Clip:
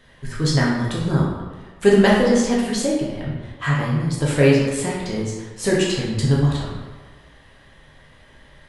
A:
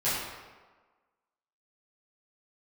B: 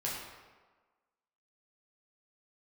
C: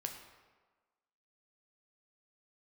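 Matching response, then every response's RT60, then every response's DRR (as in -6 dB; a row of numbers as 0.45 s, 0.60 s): B; 1.4 s, 1.4 s, 1.4 s; -13.0 dB, -5.5 dB, 3.5 dB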